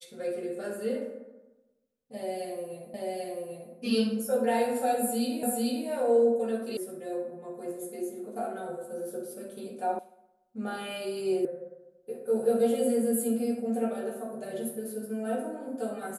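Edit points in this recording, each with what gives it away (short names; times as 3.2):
2.94 repeat of the last 0.79 s
5.43 repeat of the last 0.44 s
6.77 sound cut off
9.99 sound cut off
11.45 sound cut off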